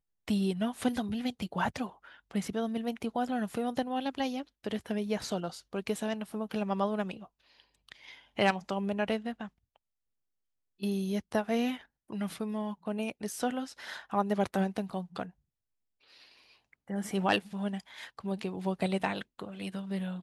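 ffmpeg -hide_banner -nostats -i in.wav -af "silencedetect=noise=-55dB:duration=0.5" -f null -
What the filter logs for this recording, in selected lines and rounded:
silence_start: 9.76
silence_end: 10.80 | silence_duration: 1.04
silence_start: 15.31
silence_end: 16.03 | silence_duration: 0.72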